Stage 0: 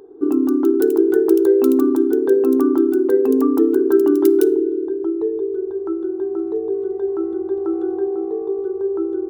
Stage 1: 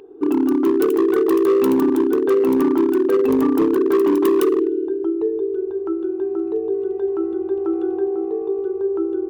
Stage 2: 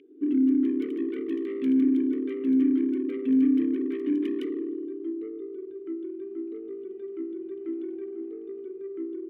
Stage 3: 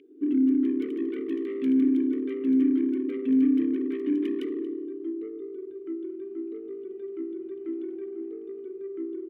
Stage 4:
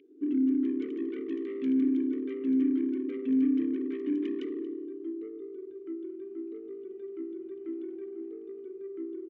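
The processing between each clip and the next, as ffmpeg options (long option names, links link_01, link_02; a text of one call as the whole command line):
ffmpeg -i in.wav -af "equalizer=frequency=2700:width=2.2:gain=11,volume=12dB,asoftclip=hard,volume=-12dB" out.wav
ffmpeg -i in.wav -filter_complex "[0:a]asoftclip=type=tanh:threshold=-16dB,asplit=3[link_01][link_02][link_03];[link_01]bandpass=frequency=270:width_type=q:width=8,volume=0dB[link_04];[link_02]bandpass=frequency=2290:width_type=q:width=8,volume=-6dB[link_05];[link_03]bandpass=frequency=3010:width_type=q:width=8,volume=-9dB[link_06];[link_04][link_05][link_06]amix=inputs=3:normalize=0,volume=2.5dB" out.wav
ffmpeg -i in.wav -af "aecho=1:1:231:0.119" out.wav
ffmpeg -i in.wav -af "aresample=16000,aresample=44100,volume=-4dB" out.wav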